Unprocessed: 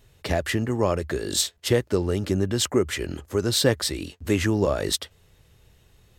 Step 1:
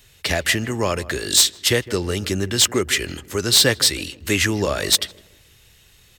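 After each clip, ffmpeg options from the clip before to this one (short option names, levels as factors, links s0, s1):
-filter_complex "[0:a]acrossover=split=450|1600[s0][s1][s2];[s2]aeval=exprs='0.422*sin(PI/2*2.51*val(0)/0.422)':c=same[s3];[s0][s1][s3]amix=inputs=3:normalize=0,asplit=2[s4][s5];[s5]adelay=158,lowpass=f=980:p=1,volume=0.15,asplit=2[s6][s7];[s7]adelay=158,lowpass=f=980:p=1,volume=0.44,asplit=2[s8][s9];[s9]adelay=158,lowpass=f=980:p=1,volume=0.44,asplit=2[s10][s11];[s11]adelay=158,lowpass=f=980:p=1,volume=0.44[s12];[s4][s6][s8][s10][s12]amix=inputs=5:normalize=0"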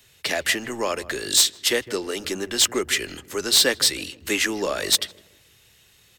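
-filter_complex "[0:a]highpass=f=140:p=1,acrossover=split=190[s0][s1];[s0]aeval=exprs='0.0119*(abs(mod(val(0)/0.0119+3,4)-2)-1)':c=same[s2];[s2][s1]amix=inputs=2:normalize=0,volume=0.75"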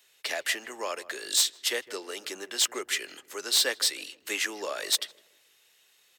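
-af "highpass=470,volume=0.473"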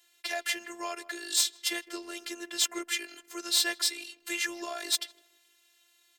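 -af "afftfilt=real='hypot(re,im)*cos(PI*b)':imag='0':win_size=512:overlap=0.75,volume=1.12"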